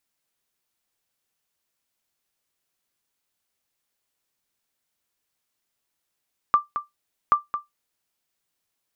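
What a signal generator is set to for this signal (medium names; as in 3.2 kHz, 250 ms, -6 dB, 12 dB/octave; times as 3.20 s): sonar ping 1.18 kHz, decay 0.16 s, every 0.78 s, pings 2, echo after 0.22 s, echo -10 dB -8.5 dBFS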